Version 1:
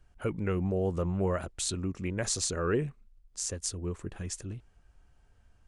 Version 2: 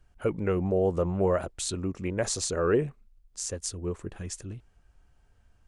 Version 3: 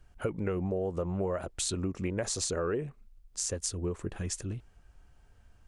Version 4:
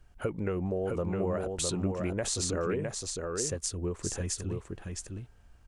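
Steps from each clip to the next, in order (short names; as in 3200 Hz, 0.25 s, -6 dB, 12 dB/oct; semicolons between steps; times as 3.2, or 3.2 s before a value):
dynamic EQ 580 Hz, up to +7 dB, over -43 dBFS, Q 0.74
compressor 6:1, threshold -32 dBFS, peak gain reduction 12.5 dB; gain +3 dB
echo 0.66 s -4 dB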